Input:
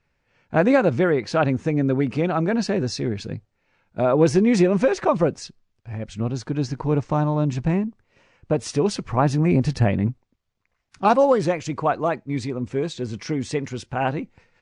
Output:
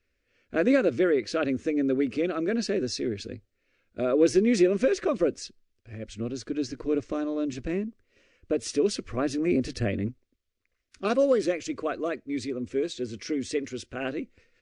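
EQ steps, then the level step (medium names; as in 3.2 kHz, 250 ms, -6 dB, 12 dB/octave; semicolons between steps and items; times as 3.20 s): static phaser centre 360 Hz, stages 4; -2.0 dB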